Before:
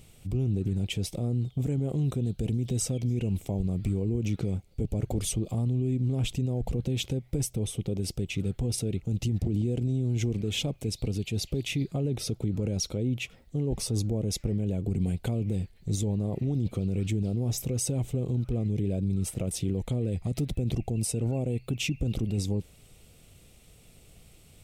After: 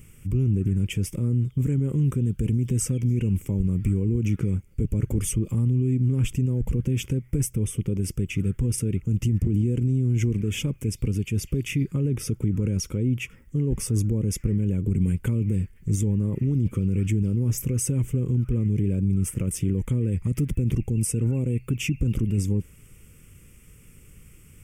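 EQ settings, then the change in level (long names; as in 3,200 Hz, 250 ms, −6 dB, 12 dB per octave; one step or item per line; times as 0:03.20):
phaser with its sweep stopped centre 1,700 Hz, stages 4
+6.0 dB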